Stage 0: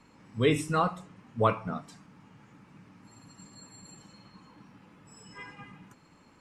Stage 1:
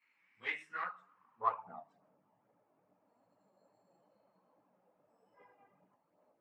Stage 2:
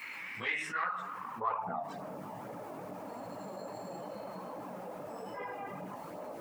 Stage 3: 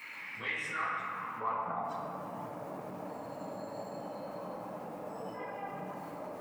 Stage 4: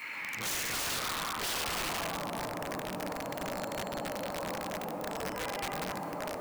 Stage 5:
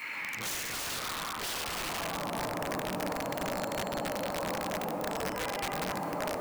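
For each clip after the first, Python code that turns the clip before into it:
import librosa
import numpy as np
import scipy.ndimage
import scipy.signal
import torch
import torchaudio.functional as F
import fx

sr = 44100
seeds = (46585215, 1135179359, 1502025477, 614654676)

y1 = fx.cheby_harmonics(x, sr, harmonics=(3, 4), levels_db=(-21, -17), full_scale_db=-11.5)
y1 = fx.filter_sweep_bandpass(y1, sr, from_hz=2200.0, to_hz=620.0, start_s=0.38, end_s=2.02, q=5.2)
y1 = fx.chorus_voices(y1, sr, voices=2, hz=1.2, base_ms=19, depth_ms=3.1, mix_pct=70)
y1 = y1 * librosa.db_to_amplitude(2.5)
y2 = fx.env_flatten(y1, sr, amount_pct=70)
y2 = y2 * librosa.db_to_amplitude(-2.5)
y3 = fx.room_shoebox(y2, sr, seeds[0], volume_m3=200.0, walls='hard', distance_m=0.49)
y3 = y3 * librosa.db_to_amplitude(-3.0)
y4 = (np.mod(10.0 ** (34.5 / 20.0) * y3 + 1.0, 2.0) - 1.0) / 10.0 ** (34.5 / 20.0)
y4 = y4 * librosa.db_to_amplitude(5.5)
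y5 = fx.rider(y4, sr, range_db=10, speed_s=0.5)
y5 = y5 * librosa.db_to_amplitude(1.0)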